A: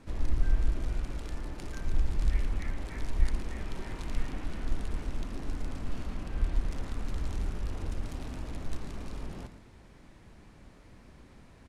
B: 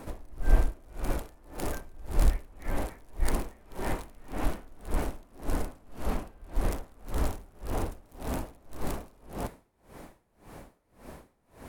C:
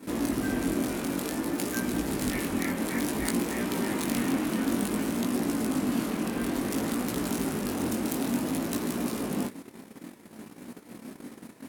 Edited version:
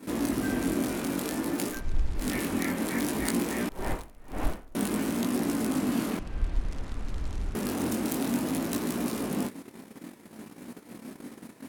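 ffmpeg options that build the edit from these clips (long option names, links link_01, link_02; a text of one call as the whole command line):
ffmpeg -i take0.wav -i take1.wav -i take2.wav -filter_complex "[0:a]asplit=2[link_01][link_02];[2:a]asplit=4[link_03][link_04][link_05][link_06];[link_03]atrim=end=1.83[link_07];[link_01]atrim=start=1.67:end=2.3[link_08];[link_04]atrim=start=2.14:end=3.692[link_09];[1:a]atrim=start=3.688:end=4.752[link_10];[link_05]atrim=start=4.748:end=6.192[link_11];[link_02]atrim=start=6.188:end=7.552[link_12];[link_06]atrim=start=7.548[link_13];[link_07][link_08]acrossfade=duration=0.16:curve1=tri:curve2=tri[link_14];[link_14][link_09]acrossfade=duration=0.16:curve1=tri:curve2=tri[link_15];[link_15][link_10]acrossfade=duration=0.004:curve1=hsin:curve2=hsin[link_16];[link_16][link_11]acrossfade=duration=0.004:curve1=hsin:curve2=hsin[link_17];[link_17][link_12]acrossfade=duration=0.004:curve1=hsin:curve2=hsin[link_18];[link_18][link_13]acrossfade=duration=0.004:curve1=hsin:curve2=hsin" out.wav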